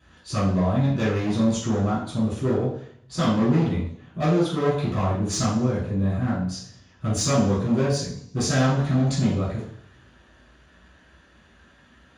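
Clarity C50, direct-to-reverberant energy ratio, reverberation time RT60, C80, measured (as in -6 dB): 2.5 dB, -11.0 dB, 0.60 s, 7.0 dB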